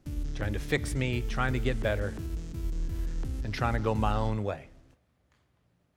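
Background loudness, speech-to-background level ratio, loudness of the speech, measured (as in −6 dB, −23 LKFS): −37.0 LKFS, 5.0 dB, −32.0 LKFS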